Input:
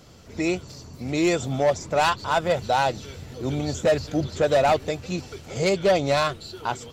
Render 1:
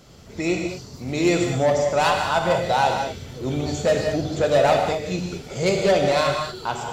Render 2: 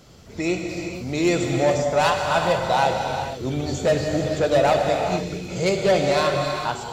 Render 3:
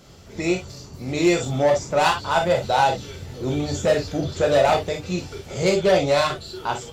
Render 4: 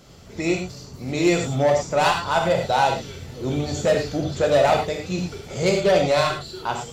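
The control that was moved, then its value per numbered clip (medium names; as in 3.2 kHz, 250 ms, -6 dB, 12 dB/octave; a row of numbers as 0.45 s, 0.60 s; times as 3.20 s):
gated-style reverb, gate: 250 ms, 500 ms, 80 ms, 130 ms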